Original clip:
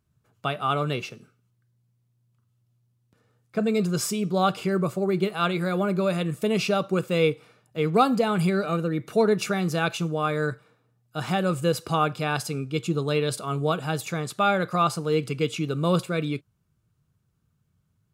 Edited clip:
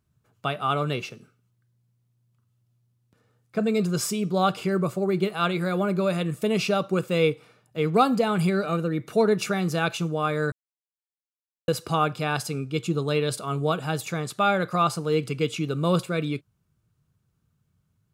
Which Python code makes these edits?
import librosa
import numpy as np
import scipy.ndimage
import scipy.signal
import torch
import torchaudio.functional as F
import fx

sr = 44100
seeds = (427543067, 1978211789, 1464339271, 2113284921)

y = fx.edit(x, sr, fx.silence(start_s=10.52, length_s=1.16), tone=tone)